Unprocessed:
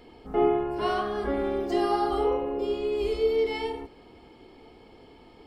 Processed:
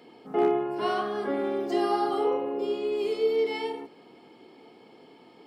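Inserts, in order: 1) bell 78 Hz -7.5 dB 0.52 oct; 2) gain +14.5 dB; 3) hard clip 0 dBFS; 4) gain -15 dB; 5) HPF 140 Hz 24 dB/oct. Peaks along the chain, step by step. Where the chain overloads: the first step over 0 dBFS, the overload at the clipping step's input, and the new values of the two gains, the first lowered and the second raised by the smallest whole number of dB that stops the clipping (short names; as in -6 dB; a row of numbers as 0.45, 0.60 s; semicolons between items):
-11.0, +3.5, 0.0, -15.0, -13.0 dBFS; step 2, 3.5 dB; step 2 +10.5 dB, step 4 -11 dB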